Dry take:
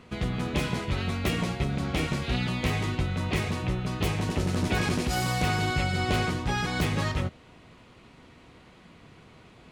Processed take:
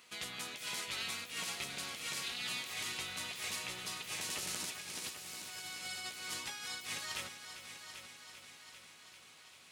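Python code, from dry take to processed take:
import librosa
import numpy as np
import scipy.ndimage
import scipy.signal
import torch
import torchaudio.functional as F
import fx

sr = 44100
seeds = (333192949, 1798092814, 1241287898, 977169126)

y = np.diff(x, prepend=0.0)
y = fx.over_compress(y, sr, threshold_db=-45.0, ratio=-0.5)
y = fx.echo_heads(y, sr, ms=394, heads='first and second', feedback_pct=61, wet_db=-12.5)
y = y * 10.0 ** (3.0 / 20.0)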